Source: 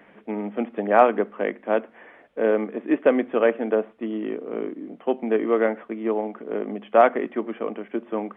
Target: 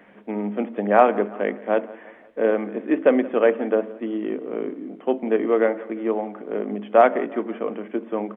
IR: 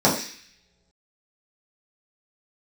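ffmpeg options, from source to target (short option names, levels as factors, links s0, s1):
-filter_complex "[0:a]aecho=1:1:173|346|519|692:0.1|0.05|0.025|0.0125,asplit=2[s0][s1];[1:a]atrim=start_sample=2205[s2];[s1][s2]afir=irnorm=-1:irlink=0,volume=0.02[s3];[s0][s3]amix=inputs=2:normalize=0"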